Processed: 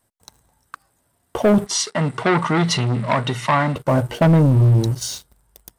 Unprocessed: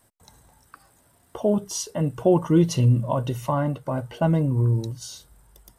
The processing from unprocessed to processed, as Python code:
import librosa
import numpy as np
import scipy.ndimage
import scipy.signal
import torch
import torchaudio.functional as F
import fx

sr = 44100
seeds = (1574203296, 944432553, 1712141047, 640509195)

y = fx.leveller(x, sr, passes=3)
y = fx.cabinet(y, sr, low_hz=190.0, low_slope=12, high_hz=8600.0, hz=(320.0, 530.0, 1300.0, 2000.0, 3900.0, 6400.0), db=(-8, -9, 5, 9, 5, -6), at=(1.66, 3.76))